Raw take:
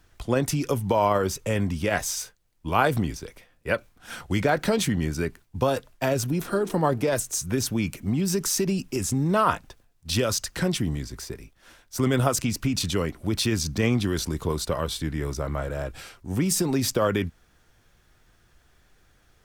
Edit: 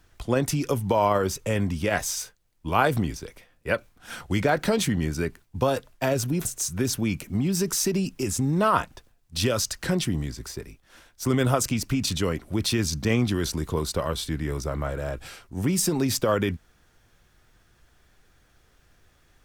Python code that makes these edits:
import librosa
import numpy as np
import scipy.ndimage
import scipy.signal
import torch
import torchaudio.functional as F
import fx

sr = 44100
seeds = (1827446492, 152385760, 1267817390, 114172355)

y = fx.edit(x, sr, fx.cut(start_s=6.45, length_s=0.73), tone=tone)